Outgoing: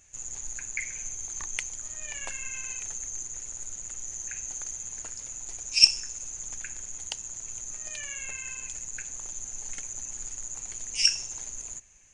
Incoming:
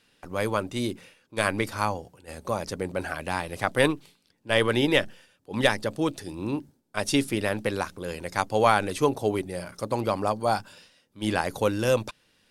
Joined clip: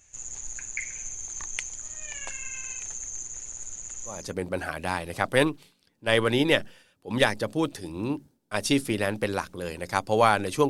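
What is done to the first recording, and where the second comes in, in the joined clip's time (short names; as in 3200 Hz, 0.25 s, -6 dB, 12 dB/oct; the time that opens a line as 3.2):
outgoing
4.19 switch to incoming from 2.62 s, crossfade 0.32 s linear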